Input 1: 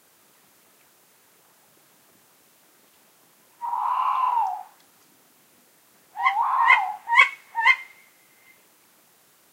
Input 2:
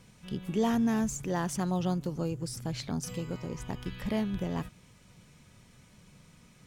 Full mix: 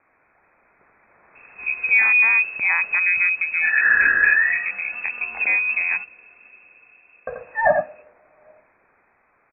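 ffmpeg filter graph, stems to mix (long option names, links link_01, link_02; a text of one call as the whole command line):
ffmpeg -i stem1.wav -i stem2.wav -filter_complex "[0:a]crystalizer=i=9:c=0,volume=-5.5dB,asplit=3[link_01][link_02][link_03];[link_01]atrim=end=5.46,asetpts=PTS-STARTPTS,afade=type=out:start_time=5.456:duration=0.004:curve=hsin[link_04];[link_02]atrim=start=5.46:end=7.27,asetpts=PTS-STARTPTS,volume=0[link_05];[link_03]atrim=start=7.27,asetpts=PTS-STARTPTS,afade=type=in:duration=0.004:curve=hsin[link_06];[link_04][link_05][link_06]concat=n=3:v=0:a=1,asplit=2[link_07][link_08];[link_08]volume=-5.5dB[link_09];[1:a]adelay=1350,volume=0.5dB[link_10];[link_09]aecho=0:1:85:1[link_11];[link_07][link_10][link_11]amix=inputs=3:normalize=0,lowpass=frequency=2300:width_type=q:width=0.5098,lowpass=frequency=2300:width_type=q:width=0.6013,lowpass=frequency=2300:width_type=q:width=0.9,lowpass=frequency=2300:width_type=q:width=2.563,afreqshift=-2700,dynaudnorm=framelen=370:gausssize=7:maxgain=11.5dB,alimiter=limit=-6.5dB:level=0:latency=1:release=423" out.wav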